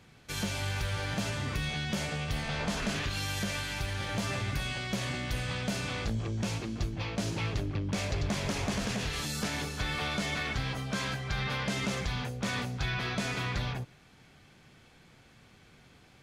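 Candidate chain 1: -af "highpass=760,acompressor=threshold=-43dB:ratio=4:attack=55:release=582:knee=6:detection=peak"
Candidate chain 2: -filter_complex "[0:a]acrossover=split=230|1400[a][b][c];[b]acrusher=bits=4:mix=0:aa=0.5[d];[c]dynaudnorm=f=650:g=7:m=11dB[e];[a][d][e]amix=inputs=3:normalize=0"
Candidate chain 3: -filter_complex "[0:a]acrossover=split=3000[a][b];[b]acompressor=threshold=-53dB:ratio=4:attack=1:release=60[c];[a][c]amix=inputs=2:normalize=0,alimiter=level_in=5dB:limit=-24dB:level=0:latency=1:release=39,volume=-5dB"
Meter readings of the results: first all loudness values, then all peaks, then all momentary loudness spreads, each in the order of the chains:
-42.5, -27.0, -37.5 LUFS; -23.0, -12.0, -29.0 dBFS; 19, 9, 1 LU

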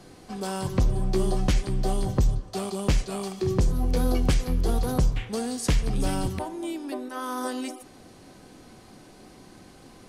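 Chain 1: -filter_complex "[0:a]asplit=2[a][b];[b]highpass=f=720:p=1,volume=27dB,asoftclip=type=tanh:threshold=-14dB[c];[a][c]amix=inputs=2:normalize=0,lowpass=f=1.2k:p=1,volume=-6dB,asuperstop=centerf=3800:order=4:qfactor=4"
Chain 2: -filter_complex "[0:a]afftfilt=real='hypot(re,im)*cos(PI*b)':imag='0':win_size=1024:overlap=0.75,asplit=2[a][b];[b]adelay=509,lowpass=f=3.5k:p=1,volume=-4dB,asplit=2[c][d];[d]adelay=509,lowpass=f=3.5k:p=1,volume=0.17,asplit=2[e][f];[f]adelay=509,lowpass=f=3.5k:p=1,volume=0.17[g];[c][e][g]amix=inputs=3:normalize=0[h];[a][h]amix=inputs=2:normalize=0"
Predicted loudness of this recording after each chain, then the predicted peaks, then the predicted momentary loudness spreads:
-24.5, -32.5 LUFS; -14.5, -8.5 dBFS; 14, 17 LU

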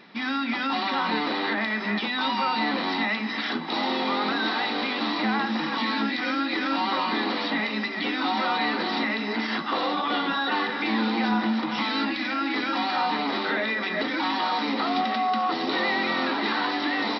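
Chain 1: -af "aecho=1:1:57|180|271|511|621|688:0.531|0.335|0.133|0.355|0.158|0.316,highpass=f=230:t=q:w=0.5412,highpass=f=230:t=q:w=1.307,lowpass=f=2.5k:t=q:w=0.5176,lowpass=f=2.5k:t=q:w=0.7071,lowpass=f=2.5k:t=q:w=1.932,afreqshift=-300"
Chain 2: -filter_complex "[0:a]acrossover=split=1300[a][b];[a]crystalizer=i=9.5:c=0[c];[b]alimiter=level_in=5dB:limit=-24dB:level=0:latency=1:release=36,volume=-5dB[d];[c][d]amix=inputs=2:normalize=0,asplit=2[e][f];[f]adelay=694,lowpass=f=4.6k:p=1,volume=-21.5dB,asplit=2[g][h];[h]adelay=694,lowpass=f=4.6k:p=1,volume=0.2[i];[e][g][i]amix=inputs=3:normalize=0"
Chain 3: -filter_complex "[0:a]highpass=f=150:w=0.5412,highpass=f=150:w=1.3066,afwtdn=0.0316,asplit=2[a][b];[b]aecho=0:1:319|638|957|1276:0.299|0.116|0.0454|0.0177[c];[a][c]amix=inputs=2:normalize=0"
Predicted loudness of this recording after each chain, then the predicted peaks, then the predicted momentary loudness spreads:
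-26.0, -25.0, -26.0 LUFS; -11.5, -13.0, -12.5 dBFS; 4, 4, 3 LU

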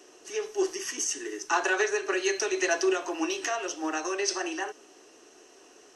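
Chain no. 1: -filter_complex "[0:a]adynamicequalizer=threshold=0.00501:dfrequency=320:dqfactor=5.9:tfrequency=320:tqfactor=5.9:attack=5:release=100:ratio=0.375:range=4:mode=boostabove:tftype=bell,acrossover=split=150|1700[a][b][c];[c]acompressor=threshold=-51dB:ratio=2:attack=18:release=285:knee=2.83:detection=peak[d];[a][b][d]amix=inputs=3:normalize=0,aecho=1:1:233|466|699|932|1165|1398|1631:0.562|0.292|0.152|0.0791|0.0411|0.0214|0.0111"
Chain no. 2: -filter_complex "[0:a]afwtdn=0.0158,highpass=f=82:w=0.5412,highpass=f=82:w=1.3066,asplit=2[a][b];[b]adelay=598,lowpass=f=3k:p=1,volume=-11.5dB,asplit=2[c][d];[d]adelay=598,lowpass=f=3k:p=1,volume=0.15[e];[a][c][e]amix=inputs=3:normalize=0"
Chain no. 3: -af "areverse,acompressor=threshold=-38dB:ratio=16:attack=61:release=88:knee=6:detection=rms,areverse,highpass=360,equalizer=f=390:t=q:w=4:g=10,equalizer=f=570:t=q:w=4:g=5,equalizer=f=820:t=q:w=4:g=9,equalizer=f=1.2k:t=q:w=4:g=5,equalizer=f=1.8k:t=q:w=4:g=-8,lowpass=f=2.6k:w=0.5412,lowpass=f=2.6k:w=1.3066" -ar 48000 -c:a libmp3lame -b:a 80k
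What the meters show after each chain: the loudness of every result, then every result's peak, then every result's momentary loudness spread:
-28.0, -29.5, -35.5 LUFS; -13.0, -12.0, -22.0 dBFS; 12, 12, 18 LU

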